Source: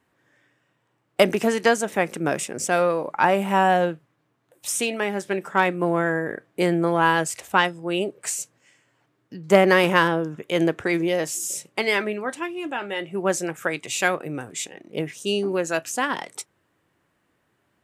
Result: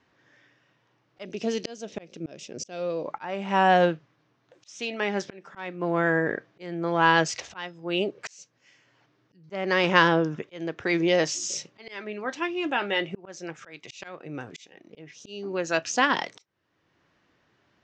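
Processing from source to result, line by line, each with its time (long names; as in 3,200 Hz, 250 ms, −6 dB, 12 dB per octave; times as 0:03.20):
0:01.25–0:03.06: flat-topped bell 1,300 Hz −10 dB
whole clip: high-shelf EQ 3,500 Hz +7.5 dB; volume swells 690 ms; Butterworth low-pass 6,100 Hz 48 dB per octave; level +1.5 dB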